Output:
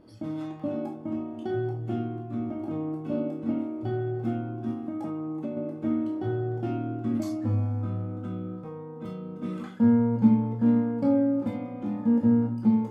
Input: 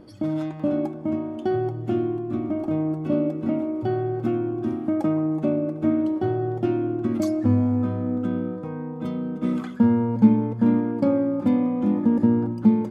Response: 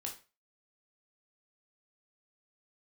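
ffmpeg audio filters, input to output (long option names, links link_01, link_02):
-filter_complex "[1:a]atrim=start_sample=2205,atrim=end_sample=4410[link_01];[0:a][link_01]afir=irnorm=-1:irlink=0,asettb=1/sr,asplit=3[link_02][link_03][link_04];[link_02]atrim=end=4.714[link_05];[link_03]atrim=start=4.71:end=5.57,asetpts=PTS-STARTPTS,afade=type=in:duration=0.004:curve=qsin,afade=type=out:start_time=0.856:duration=0.004:curve=qsin,acompressor=threshold=-26dB:ratio=4[link_06];[link_04]atrim=start=5.566[link_07];[link_05][link_06]acrossfade=duration=0.004:curve1=hsin:curve2=qsin[link_08];[link_08][link_07]acrossfade=duration=0.004:curve1=qsin:curve2=hsin,volume=-4dB"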